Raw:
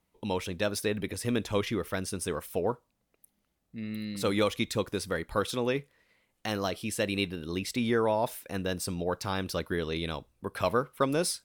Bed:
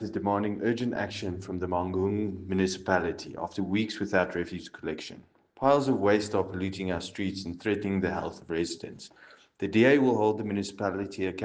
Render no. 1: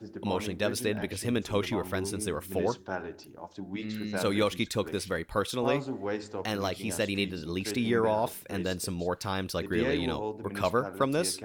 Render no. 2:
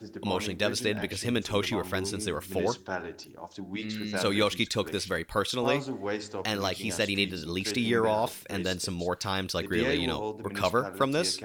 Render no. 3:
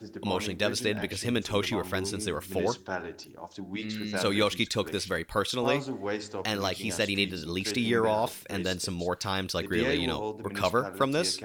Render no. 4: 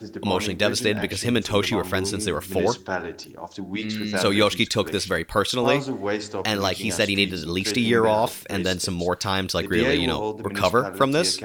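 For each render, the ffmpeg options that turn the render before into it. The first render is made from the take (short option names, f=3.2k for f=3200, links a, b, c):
-filter_complex "[1:a]volume=-9.5dB[a];[0:a][a]amix=inputs=2:normalize=0"
-filter_complex "[0:a]acrossover=split=7000[a][b];[b]acompressor=threshold=-52dB:ratio=4:attack=1:release=60[c];[a][c]amix=inputs=2:normalize=0,highshelf=f=2.1k:g=7.5"
-af anull
-af "volume=6.5dB"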